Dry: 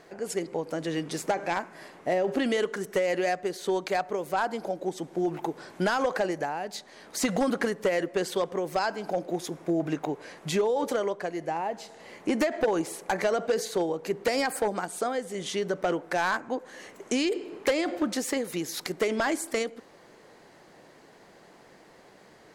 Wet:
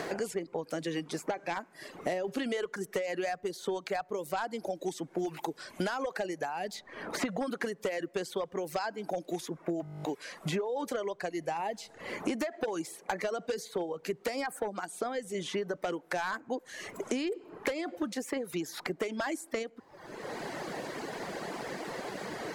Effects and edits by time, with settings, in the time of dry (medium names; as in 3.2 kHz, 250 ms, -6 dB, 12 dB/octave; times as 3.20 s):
9.83 s: stutter in place 0.02 s, 11 plays
whole clip: reverb removal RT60 0.78 s; three bands compressed up and down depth 100%; trim -6 dB